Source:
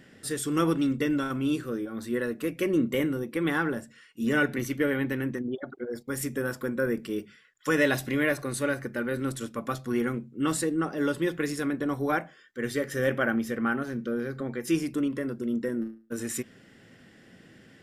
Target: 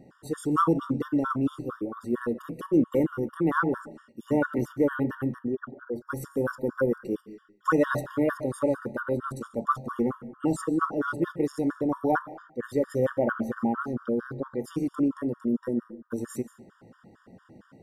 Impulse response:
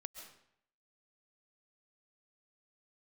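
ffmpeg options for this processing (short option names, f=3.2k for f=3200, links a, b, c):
-filter_complex "[0:a]highshelf=f=1.6k:t=q:w=3:g=-10,asplit=2[a][b];[1:a]atrim=start_sample=2205,afade=t=out:st=0.44:d=0.01,atrim=end_sample=19845[c];[b][c]afir=irnorm=-1:irlink=0,volume=-1.5dB[d];[a][d]amix=inputs=2:normalize=0,afftfilt=real='re*gt(sin(2*PI*4.4*pts/sr)*(1-2*mod(floor(b*sr/1024/940),2)),0)':imag='im*gt(sin(2*PI*4.4*pts/sr)*(1-2*mod(floor(b*sr/1024/940),2)),0)':win_size=1024:overlap=0.75"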